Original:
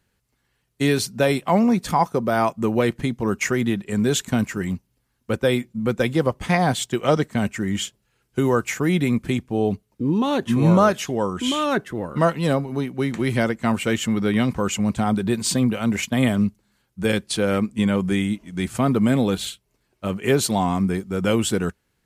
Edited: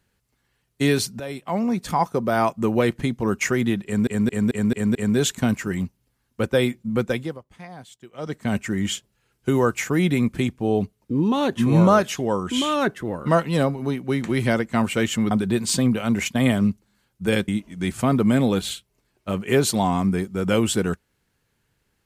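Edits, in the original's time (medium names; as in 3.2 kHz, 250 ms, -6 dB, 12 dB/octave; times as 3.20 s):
1.20–2.68 s: fade in equal-power, from -16 dB
3.85 s: stutter 0.22 s, 6 plays
5.89–7.47 s: dip -21 dB, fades 0.40 s
14.21–15.08 s: delete
17.25–18.24 s: delete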